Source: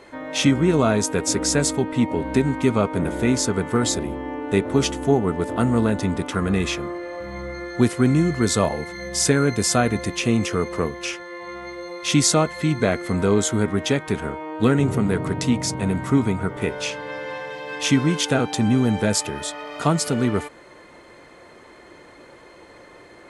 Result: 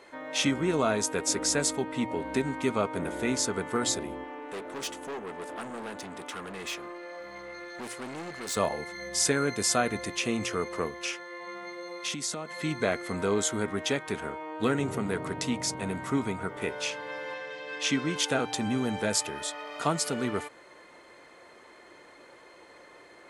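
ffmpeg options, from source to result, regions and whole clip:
-filter_complex "[0:a]asettb=1/sr,asplit=3[s0][s1][s2];[s0]atrim=end=4.244[s3];[s1]atrim=start=4.24:end=8.57,asetpts=PTS-STARTPTS,afade=t=in:d=0.004:c=qsin,afade=t=out:st=4.326:d=0.004:c=qsin,aeval=exprs='(tanh(15.8*val(0)+0.3)-tanh(0.3))/15.8':c=same,lowshelf=f=180:g=-12[s4];[s2]atrim=start=8.566[s5];[s3][s4]acrossfade=d=0.004:c1=hsin:c2=qsin[s6];[s6][s5]acrossfade=d=0.004:c1=qsin:c2=hsin,asettb=1/sr,asplit=3[s7][s8][s9];[s7]atrim=end=11.474[s10];[s8]atrim=start=11.47:end=12.62,asetpts=PTS-STARTPTS,afade=t=in:d=0.004:c=qsin,afade=t=out:st=1.146:d=0.004:c=qsin,lowshelf=f=110:t=q:w=1.5:g=-12,acompressor=threshold=0.0708:ratio=10:attack=3.2:release=140:knee=1:detection=peak[s11];[s9]atrim=start=12.616[s12];[s10][s11]acrossfade=d=0.004:c1=hsin:c2=qsin[s13];[s13][s12]acrossfade=d=0.004:c1=qsin:c2=hsin,asettb=1/sr,asplit=3[s14][s15][s16];[s14]atrim=end=17.344[s17];[s15]atrim=start=17.34:end=18.16,asetpts=PTS-STARTPTS,afade=t=in:d=0.004:c=qsin,afade=t=out:st=0.816:d=0.004:c=qsin,highpass=130,lowpass=7300,equalizer=f=880:w=3.7:g=-7.5[s18];[s16]atrim=start=18.156[s19];[s17][s18]acrossfade=d=0.004:c1=hsin:c2=qsin[s20];[s20][s19]acrossfade=d=0.004:c1=qsin:c2=hsin,lowshelf=f=250:g=-11.5,bandreject=f=58.76:t=h:w=4,bandreject=f=117.52:t=h:w=4,volume=0.596"

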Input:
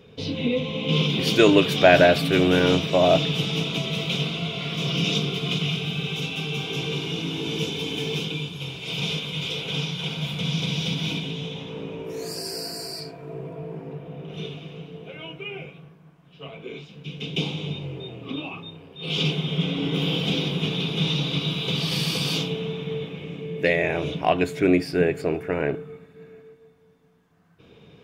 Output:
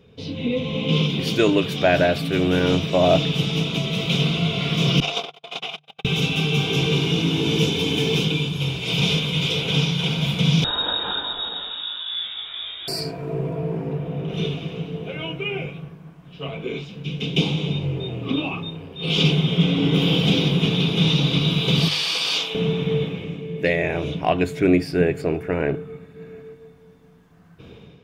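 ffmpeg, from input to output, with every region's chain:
-filter_complex "[0:a]asettb=1/sr,asplit=3[s0][s1][s2];[s0]atrim=end=5.004[s3];[s1]atrim=start=5:end=6.05,asetpts=PTS-STARTPTS,afade=t=in:d=0.004:c=qsin,afade=t=out:st=1.046:d=0.004:c=qsin,highshelf=f=4500:g=-7,agate=range=0.00251:threshold=0.0562:ratio=16:release=100:detection=peak,highpass=f=740:t=q:w=3.1[s4];[s2]atrim=start=6.046[s5];[s3][s4]acrossfade=d=0.004:c1=hsin:c2=qsin[s6];[s6][s5]acrossfade=d=0.004:c1=qsin:c2=hsin,asettb=1/sr,asplit=3[s7][s8][s9];[s7]atrim=end=10.644[s10];[s8]atrim=start=10.64:end=12.88,asetpts=PTS-STARTPTS,afade=t=in:d=0.004:c=qsin,afade=t=out:st=2.236:d=0.004:c=qsin,flanger=delay=18.5:depth=3.7:speed=1,lowpass=f=3300:t=q:w=0.5098,lowpass=f=3300:t=q:w=0.6013,lowpass=f=3300:t=q:w=0.9,lowpass=f=3300:t=q:w=2.563,afreqshift=-3900[s11];[s9]atrim=start=12.876[s12];[s10][s11]acrossfade=d=0.004:c1=hsin:c2=qsin[s13];[s13][s12]acrossfade=d=0.004:c1=qsin:c2=hsin,asettb=1/sr,asplit=3[s14][s15][s16];[s14]atrim=end=21.884[s17];[s15]atrim=start=21.88:end=22.55,asetpts=PTS-STARTPTS,afade=t=in:d=0.004:c=qsin,afade=t=out:st=0.666:d=0.004:c=qsin,highpass=800,acrossover=split=7400[s18][s19];[s19]acompressor=threshold=0.002:ratio=4:attack=1:release=60[s20];[s18][s20]amix=inputs=2:normalize=0[s21];[s16]atrim=start=22.546[s22];[s17][s21]acrossfade=d=0.004:c1=hsin:c2=qsin[s23];[s23][s22]acrossfade=d=0.004:c1=qsin:c2=hsin,lowshelf=f=150:g=8.5,bandreject=f=50:t=h:w=6,bandreject=f=100:t=h:w=6,bandreject=f=150:t=h:w=6,dynaudnorm=f=390:g=3:m=3.76,volume=0.596"

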